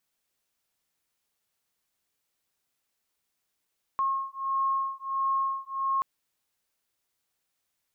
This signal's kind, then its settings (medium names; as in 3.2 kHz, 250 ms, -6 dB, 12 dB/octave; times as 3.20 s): beating tones 1.08 kHz, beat 1.5 Hz, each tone -29 dBFS 2.03 s